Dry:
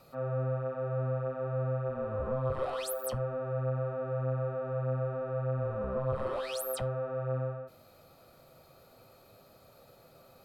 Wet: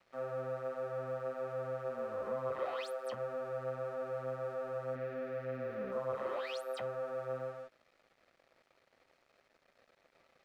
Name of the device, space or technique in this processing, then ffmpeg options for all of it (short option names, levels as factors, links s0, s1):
pocket radio on a weak battery: -filter_complex "[0:a]highpass=280,lowpass=4200,aeval=exprs='sgn(val(0))*max(abs(val(0))-0.00106,0)':c=same,equalizer=f=2000:t=o:w=0.54:g=6,asettb=1/sr,asplit=3[s0][s1][s2];[s0]atrim=end=4.954[s3];[s1]atrim=start=4.95:end=5.92,asetpts=PTS-STARTPTS,afade=t=in:d=0.004:c=qsin,afade=t=out:st=0.966:d=0.004:c=qsin,equalizer=f=250:t=o:w=1:g=8,equalizer=f=1000:t=o:w=1:g=-11,equalizer=f=2000:t=o:w=1:g=9,equalizer=f=8000:t=o:w=1:g=-8[s4];[s2]atrim=start=5.916[s5];[s3][s4]acrossfade=d=0.004:c1=hsin:c2=qsin[s6];[s6][s5]acrossfade=d=0.004:c1=qsin:c2=hsin,volume=0.708"